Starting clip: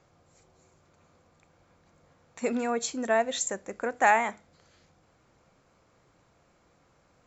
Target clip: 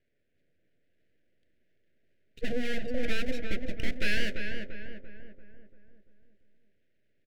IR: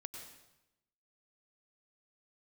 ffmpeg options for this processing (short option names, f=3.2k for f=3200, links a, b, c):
-filter_complex "[0:a]lowpass=f=2.7k:w=0.5412,lowpass=f=2.7k:w=1.3066,afftdn=nr=20:nf=-40,lowshelf=f=390:g=7,asplit=2[a][b];[b]acompressor=threshold=-33dB:ratio=6,volume=-1dB[c];[a][c]amix=inputs=2:normalize=0,asplit=2[d][e];[e]highpass=f=720:p=1,volume=21dB,asoftclip=type=tanh:threshold=-7.5dB[f];[d][f]amix=inputs=2:normalize=0,lowpass=f=1.1k:p=1,volume=-6dB,aeval=exprs='abs(val(0))':c=same,asuperstop=centerf=1000:order=8:qfactor=0.99,asplit=2[g][h];[h]adelay=342,lowpass=f=1.8k:p=1,volume=-4dB,asplit=2[i][j];[j]adelay=342,lowpass=f=1.8k:p=1,volume=0.52,asplit=2[k][l];[l]adelay=342,lowpass=f=1.8k:p=1,volume=0.52,asplit=2[m][n];[n]adelay=342,lowpass=f=1.8k:p=1,volume=0.52,asplit=2[o][p];[p]adelay=342,lowpass=f=1.8k:p=1,volume=0.52,asplit=2[q][r];[r]adelay=342,lowpass=f=1.8k:p=1,volume=0.52,asplit=2[s][t];[t]adelay=342,lowpass=f=1.8k:p=1,volume=0.52[u];[g][i][k][m][o][q][s][u]amix=inputs=8:normalize=0,volume=-6.5dB"